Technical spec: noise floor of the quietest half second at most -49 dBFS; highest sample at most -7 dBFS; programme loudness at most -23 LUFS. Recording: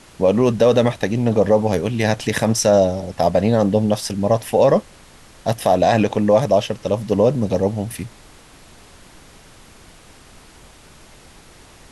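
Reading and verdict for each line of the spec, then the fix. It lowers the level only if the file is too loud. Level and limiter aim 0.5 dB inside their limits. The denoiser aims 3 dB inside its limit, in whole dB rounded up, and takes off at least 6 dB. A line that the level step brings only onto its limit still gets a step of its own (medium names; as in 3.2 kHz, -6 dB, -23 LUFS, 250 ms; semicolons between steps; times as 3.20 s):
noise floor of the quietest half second -45 dBFS: fail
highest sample -4.5 dBFS: fail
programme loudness -18.0 LUFS: fail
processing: trim -5.5 dB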